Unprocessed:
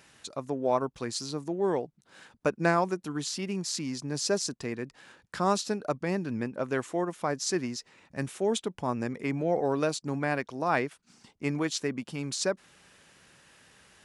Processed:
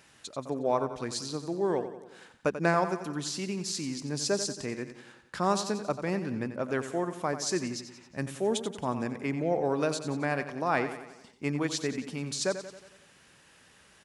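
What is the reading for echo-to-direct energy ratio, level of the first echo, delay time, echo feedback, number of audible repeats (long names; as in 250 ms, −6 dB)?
−9.5 dB, −11.0 dB, 90 ms, 54%, 5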